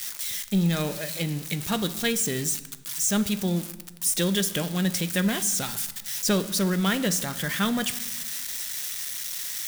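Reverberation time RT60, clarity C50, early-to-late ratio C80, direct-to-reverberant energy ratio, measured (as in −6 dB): 1.2 s, 14.5 dB, 16.5 dB, 11.0 dB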